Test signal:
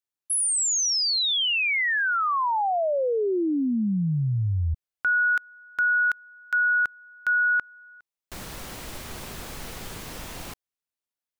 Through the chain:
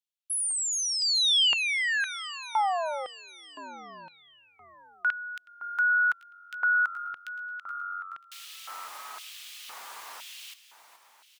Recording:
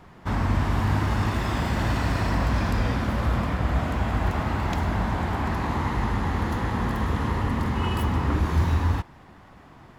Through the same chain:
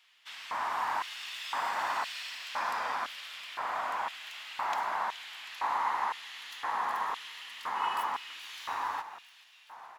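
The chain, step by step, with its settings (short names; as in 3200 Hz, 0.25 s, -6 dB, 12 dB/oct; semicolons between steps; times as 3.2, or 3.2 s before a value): frequency-shifting echo 0.425 s, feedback 65%, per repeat -46 Hz, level -14 dB; LFO high-pass square 0.98 Hz 940–3000 Hz; gain -5.5 dB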